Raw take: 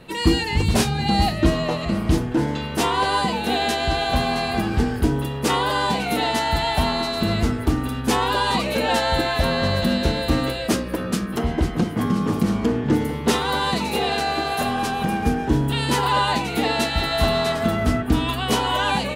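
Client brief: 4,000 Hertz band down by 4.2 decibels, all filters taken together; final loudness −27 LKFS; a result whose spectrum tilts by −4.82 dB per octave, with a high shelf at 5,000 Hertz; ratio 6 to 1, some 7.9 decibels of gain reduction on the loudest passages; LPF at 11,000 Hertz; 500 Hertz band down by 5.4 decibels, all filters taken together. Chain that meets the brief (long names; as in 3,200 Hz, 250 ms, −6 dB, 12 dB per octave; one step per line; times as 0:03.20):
low-pass filter 11,000 Hz
parametric band 500 Hz −7.5 dB
parametric band 4,000 Hz −6.5 dB
high-shelf EQ 5,000 Hz +3.5 dB
downward compressor 6 to 1, threshold −23 dBFS
level +0.5 dB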